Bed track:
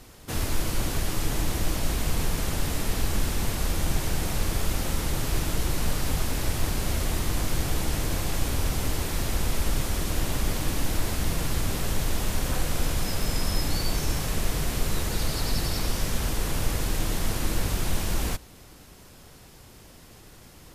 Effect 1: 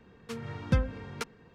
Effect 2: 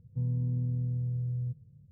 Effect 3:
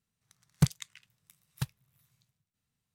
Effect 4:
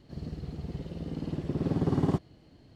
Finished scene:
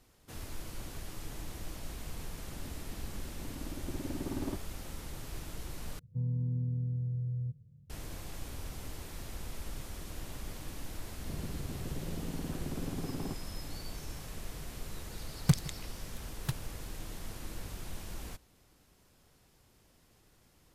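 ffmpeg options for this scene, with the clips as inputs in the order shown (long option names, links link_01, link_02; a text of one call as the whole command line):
ffmpeg -i bed.wav -i cue0.wav -i cue1.wav -i cue2.wav -i cue3.wav -filter_complex "[4:a]asplit=2[link_01][link_02];[0:a]volume=-16dB[link_03];[link_01]aecho=1:1:3.3:0.65[link_04];[link_02]acompressor=threshold=-35dB:ratio=6:attack=3.2:release=140:knee=1:detection=peak[link_05];[3:a]aecho=1:1:164:0.0794[link_06];[link_03]asplit=2[link_07][link_08];[link_07]atrim=end=5.994[link_09];[2:a]atrim=end=1.91,asetpts=PTS-STARTPTS,volume=-2.5dB[link_10];[link_08]atrim=start=7.896[link_11];[link_04]atrim=end=2.75,asetpts=PTS-STARTPTS,volume=-11.5dB,afade=type=in:duration=0.004:curve=hsin,afade=type=out:start_time=2.746:duration=0.004:curve=hsin,adelay=2390[link_12];[link_05]atrim=end=2.75,asetpts=PTS-STARTPTS,afade=type=in:duration=0.004:curve=hsin,afade=type=out:start_time=2.746:duration=0.004:curve=hsin,adelay=11170[link_13];[link_06]atrim=end=2.94,asetpts=PTS-STARTPTS,volume=-1dB,afade=type=in:duration=0.004:curve=hsin,afade=type=out:start_time=2.936:duration=0.004:curve=hsin,adelay=14870[link_14];[link_09][link_10]acrossfade=duration=0.004:curve1=hsin:curve2=hsin[link_15];[link_15][link_11]acrossfade=duration=0.004:curve1=hsin:curve2=hsin[link_16];[link_16][link_12][link_13][link_14]amix=inputs=4:normalize=0" out.wav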